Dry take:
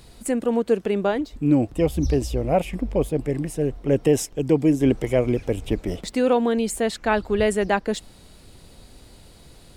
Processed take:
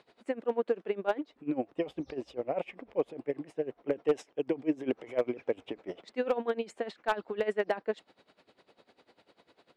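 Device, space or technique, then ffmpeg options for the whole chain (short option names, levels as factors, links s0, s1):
helicopter radio: -af "highpass=390,lowpass=2600,aeval=exprs='val(0)*pow(10,-19*(0.5-0.5*cos(2*PI*10*n/s))/20)':c=same,asoftclip=type=hard:threshold=0.158,volume=0.794"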